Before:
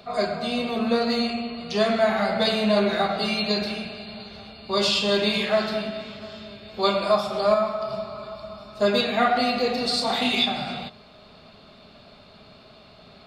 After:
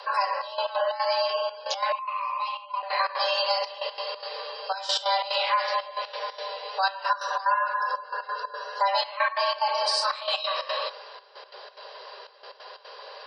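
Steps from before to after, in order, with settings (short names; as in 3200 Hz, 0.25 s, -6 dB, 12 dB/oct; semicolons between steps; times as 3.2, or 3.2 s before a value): spectral gate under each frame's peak -30 dB strong; compressor 2.5:1, threshold -31 dBFS, peak gain reduction 11 dB; frequency shift +380 Hz; step gate "xxxxx..x.xx.x" 181 bpm -12 dB; 1.92–2.83 double band-pass 1700 Hz, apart 1.3 oct; gain +6 dB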